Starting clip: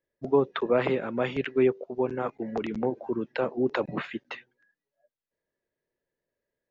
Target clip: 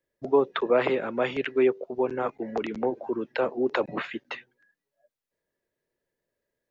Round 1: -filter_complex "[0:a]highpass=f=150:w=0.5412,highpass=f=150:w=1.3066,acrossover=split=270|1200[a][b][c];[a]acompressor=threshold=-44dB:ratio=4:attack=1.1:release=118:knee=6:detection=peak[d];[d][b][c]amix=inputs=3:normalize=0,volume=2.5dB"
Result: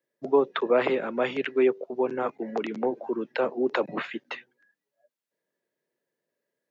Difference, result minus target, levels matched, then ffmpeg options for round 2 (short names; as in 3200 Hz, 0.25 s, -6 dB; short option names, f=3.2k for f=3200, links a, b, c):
125 Hz band -3.5 dB
-filter_complex "[0:a]acrossover=split=270|1200[a][b][c];[a]acompressor=threshold=-44dB:ratio=4:attack=1.1:release=118:knee=6:detection=peak[d];[d][b][c]amix=inputs=3:normalize=0,volume=2.5dB"